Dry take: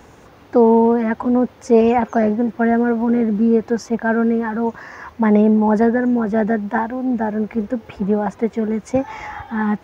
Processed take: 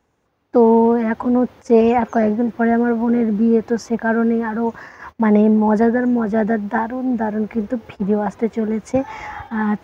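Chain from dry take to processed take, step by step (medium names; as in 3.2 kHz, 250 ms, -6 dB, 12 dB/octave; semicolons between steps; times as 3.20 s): gate -35 dBFS, range -22 dB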